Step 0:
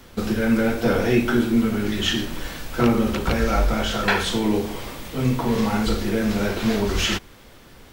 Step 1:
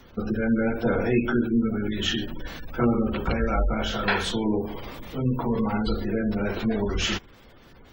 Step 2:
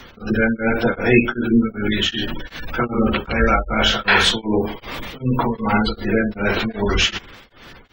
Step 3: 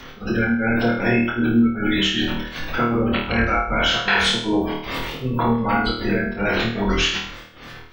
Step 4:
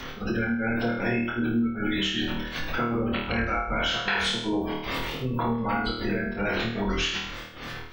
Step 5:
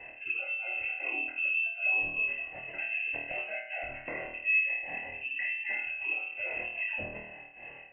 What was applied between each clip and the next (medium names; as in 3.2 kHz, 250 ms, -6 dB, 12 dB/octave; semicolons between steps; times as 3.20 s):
spectral gate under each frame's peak -25 dB strong; trim -3.5 dB
peaking EQ 2.5 kHz +8.5 dB 2.8 oct; tremolo of two beating tones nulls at 2.6 Hz; trim +7.5 dB
compression, threshold -18 dBFS, peak gain reduction 9.5 dB; on a send: flutter echo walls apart 4.4 m, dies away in 0.53 s
compression 2:1, threshold -33 dBFS, peak gain reduction 11.5 dB; trim +2 dB
vowel filter u; frequency inversion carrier 2.9 kHz; trim +4.5 dB